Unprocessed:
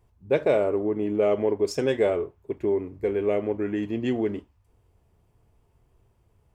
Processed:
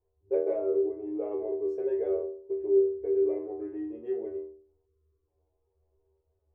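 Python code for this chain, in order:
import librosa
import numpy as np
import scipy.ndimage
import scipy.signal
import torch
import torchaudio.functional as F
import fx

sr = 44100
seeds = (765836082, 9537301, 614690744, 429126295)

y = fx.stiff_resonator(x, sr, f0_hz=76.0, decay_s=0.58, stiffness=0.002)
y = fx.spec_box(y, sr, start_s=4.86, length_s=0.42, low_hz=480.0, high_hz=1000.0, gain_db=-18)
y = fx.curve_eq(y, sr, hz=(100.0, 190.0, 380.0, 5000.0), db=(0, -29, 10, -27))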